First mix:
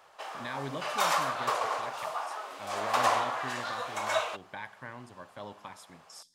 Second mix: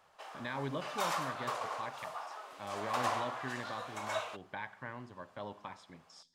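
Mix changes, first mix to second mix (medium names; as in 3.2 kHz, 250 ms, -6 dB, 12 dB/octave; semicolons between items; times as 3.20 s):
speech: add distance through air 130 m; background -8.0 dB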